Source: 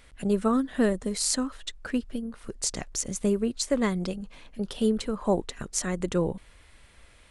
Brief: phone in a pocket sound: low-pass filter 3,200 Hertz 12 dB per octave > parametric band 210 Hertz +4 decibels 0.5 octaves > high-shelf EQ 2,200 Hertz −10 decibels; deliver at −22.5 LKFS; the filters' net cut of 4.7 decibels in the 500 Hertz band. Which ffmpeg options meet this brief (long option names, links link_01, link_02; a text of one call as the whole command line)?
ffmpeg -i in.wav -af "lowpass=3200,equalizer=frequency=210:width_type=o:width=0.5:gain=4,equalizer=frequency=500:width_type=o:gain=-5.5,highshelf=frequency=2200:gain=-10,volume=6dB" out.wav